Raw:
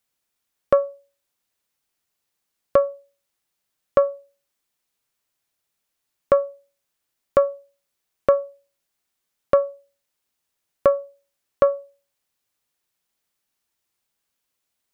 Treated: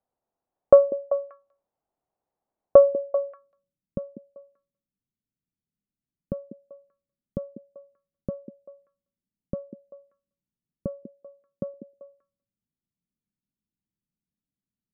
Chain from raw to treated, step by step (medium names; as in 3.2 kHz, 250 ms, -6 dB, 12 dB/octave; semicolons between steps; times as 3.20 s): 11.03–11.74 s: high-pass 140 Hz; low-pass sweep 740 Hz -> 200 Hz, 2.77–3.59 s; repeats whose band climbs or falls 194 ms, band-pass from 300 Hz, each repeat 1.4 oct, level -6.5 dB; trim -1 dB